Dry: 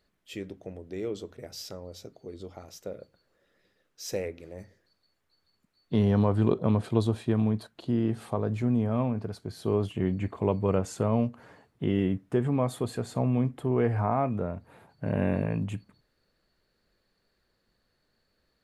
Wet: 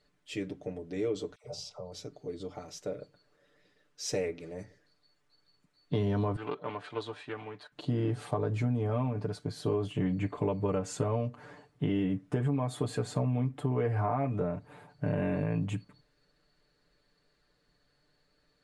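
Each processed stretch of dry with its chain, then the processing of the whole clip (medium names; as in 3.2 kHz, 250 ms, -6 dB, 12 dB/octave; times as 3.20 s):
1.35–1.92 s: distance through air 55 m + static phaser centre 720 Hz, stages 4 + phase dispersion lows, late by 89 ms, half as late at 950 Hz
6.36–7.72 s: band-pass filter 1.9 kHz, Q 0.95 + loudspeaker Doppler distortion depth 0.13 ms
whole clip: low-pass 9.8 kHz 24 dB/octave; comb 6.8 ms, depth 79%; compression, threshold -26 dBFS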